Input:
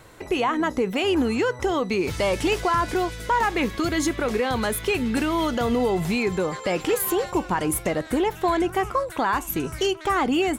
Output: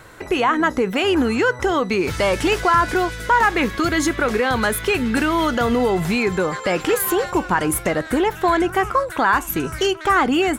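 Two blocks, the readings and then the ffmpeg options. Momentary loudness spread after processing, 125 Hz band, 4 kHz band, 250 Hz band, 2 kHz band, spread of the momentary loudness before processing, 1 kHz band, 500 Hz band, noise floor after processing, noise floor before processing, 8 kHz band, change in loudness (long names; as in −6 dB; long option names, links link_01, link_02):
4 LU, +3.5 dB, +4.0 dB, +3.5 dB, +7.5 dB, 3 LU, +5.5 dB, +3.5 dB, −35 dBFS, −39 dBFS, +3.5 dB, +4.5 dB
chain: -af "equalizer=frequency=1500:width=2:gain=6.5,volume=3.5dB"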